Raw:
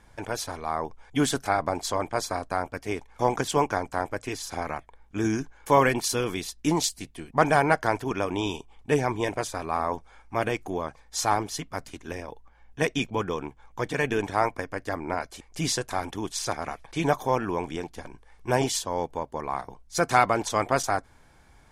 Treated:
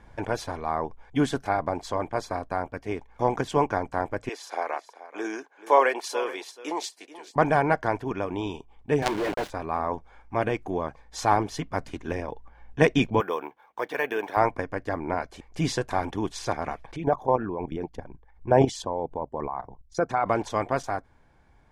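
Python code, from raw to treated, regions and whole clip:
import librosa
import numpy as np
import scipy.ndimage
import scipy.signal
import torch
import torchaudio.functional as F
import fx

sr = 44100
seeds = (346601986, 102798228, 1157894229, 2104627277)

y = fx.chain(x, sr, fx.highpass(hz=420.0, slope=24),
    fx.echo_single(ms=432, db=-15.0), at=(4.29, 7.36))
y = fx.chain(y, sr, fx.bandpass_edges(low_hz=230.0, high_hz=3500.0),
    fx.quant_companded(bits=2), at=(9.02, 9.5))
y = fx.chain(y, sr, fx.highpass(hz=490.0, slope=12),
    fx.resample_bad(factor=3, down='filtered', up='hold'), at=(13.2, 14.37))
y = fx.chain(y, sr, fx.envelope_sharpen(power=1.5),
    fx.level_steps(step_db=12), at=(16.96, 20.26))
y = fx.lowpass(y, sr, hz=1800.0, slope=6)
y = fx.notch(y, sr, hz=1300.0, q=16.0)
y = fx.rider(y, sr, range_db=10, speed_s=2.0)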